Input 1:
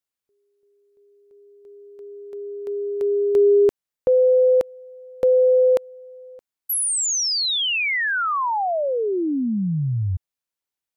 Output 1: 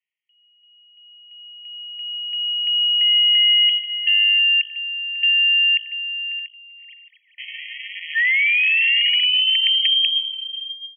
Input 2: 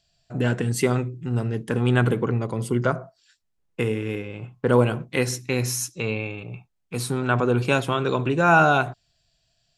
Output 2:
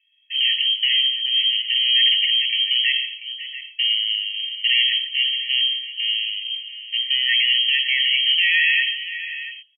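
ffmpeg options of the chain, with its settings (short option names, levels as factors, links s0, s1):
-filter_complex "[0:a]lowshelf=f=320:g=-2.5,bandreject=f=50:t=h:w=6,bandreject=f=100:t=h:w=6,bandreject=f=150:t=h:w=6,bandreject=f=200:t=h:w=6,bandreject=f=250:t=h:w=6,bandreject=f=300:t=h:w=6,bandreject=f=350:t=h:w=6,bandreject=f=400:t=h:w=6,bandreject=f=450:t=h:w=6,asplit=2[s0][s1];[s1]acompressor=threshold=0.0282:ratio=12:attack=7.3:release=65:knee=6:detection=peak,volume=0.794[s2];[s0][s2]amix=inputs=2:normalize=0,asoftclip=type=hard:threshold=0.1,aecho=1:1:89|145|545|688:0.158|0.211|0.158|0.2,aeval=exprs='(mod(6.31*val(0)+1,2)-1)/6.31':c=same,lowpass=f=2800:t=q:w=0.5098,lowpass=f=2800:t=q:w=0.6013,lowpass=f=2800:t=q:w=0.9,lowpass=f=2800:t=q:w=2.563,afreqshift=-3300,afftfilt=real='re*eq(mod(floor(b*sr/1024/1800),2),1)':imag='im*eq(mod(floor(b*sr/1024/1800),2),1)':win_size=1024:overlap=0.75,volume=1.78"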